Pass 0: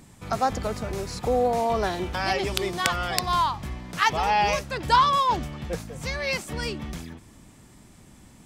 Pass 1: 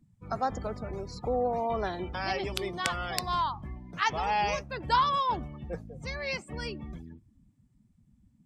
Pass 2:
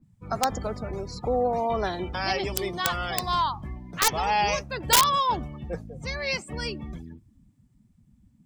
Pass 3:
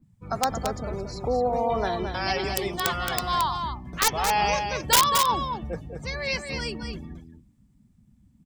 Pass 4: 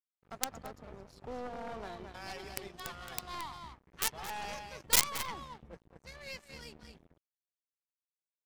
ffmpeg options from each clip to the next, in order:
ffmpeg -i in.wav -af "afftdn=noise_reduction=25:noise_floor=-38,volume=-6dB" out.wav
ffmpeg -i in.wav -af "aeval=exprs='(mod(7.5*val(0)+1,2)-1)/7.5':channel_layout=same,adynamicequalizer=threshold=0.00631:dfrequency=3400:dqfactor=0.7:tfrequency=3400:tqfactor=0.7:attack=5:release=100:ratio=0.375:range=2.5:mode=boostabove:tftype=highshelf,volume=4dB" out.wav
ffmpeg -i in.wav -af "aecho=1:1:222:0.473" out.wav
ffmpeg -i in.wav -af "aeval=exprs='sgn(val(0))*max(abs(val(0))-0.0158,0)':channel_layout=same,aresample=32000,aresample=44100,aeval=exprs='0.501*(cos(1*acos(clip(val(0)/0.501,-1,1)))-cos(1*PI/2))+0.1*(cos(2*acos(clip(val(0)/0.501,-1,1)))-cos(2*PI/2))+0.2*(cos(3*acos(clip(val(0)/0.501,-1,1)))-cos(3*PI/2))':channel_layout=same" out.wav

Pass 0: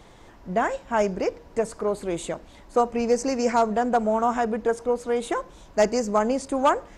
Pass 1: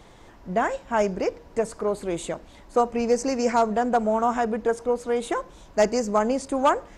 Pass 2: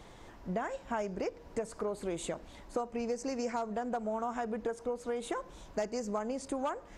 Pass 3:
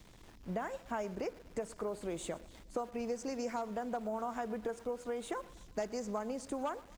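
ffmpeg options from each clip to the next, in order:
ffmpeg -i in.wav -af anull out.wav
ffmpeg -i in.wav -af "acompressor=threshold=-29dB:ratio=6,volume=-3dB" out.wav
ffmpeg -i in.wav -filter_complex "[0:a]acrossover=split=320|3500[link_01][link_02][link_03];[link_02]aeval=exprs='val(0)*gte(abs(val(0)),0.00251)':channel_layout=same[link_04];[link_01][link_04][link_03]amix=inputs=3:normalize=0,aecho=1:1:121|242|363|484:0.0891|0.0481|0.026|0.014,volume=-3dB" out.wav

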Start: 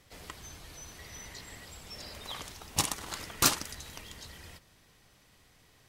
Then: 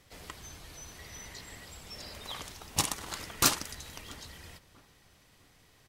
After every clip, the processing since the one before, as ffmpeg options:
ffmpeg -i in.wav -filter_complex "[0:a]asplit=2[link_01][link_02];[link_02]adelay=662,lowpass=frequency=1600:poles=1,volume=-21dB,asplit=2[link_03][link_04];[link_04]adelay=662,lowpass=frequency=1600:poles=1,volume=0.37,asplit=2[link_05][link_06];[link_06]adelay=662,lowpass=frequency=1600:poles=1,volume=0.37[link_07];[link_01][link_03][link_05][link_07]amix=inputs=4:normalize=0" out.wav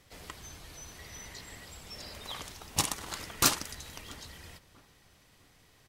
ffmpeg -i in.wav -af anull out.wav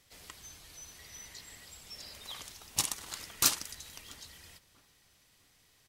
ffmpeg -i in.wav -af "highshelf=frequency=2200:gain=9.5,volume=-9dB" out.wav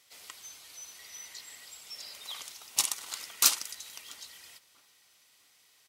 ffmpeg -i in.wav -af "highpass=frequency=900:poles=1,bandreject=frequency=1700:width=12,volume=3.5dB" out.wav

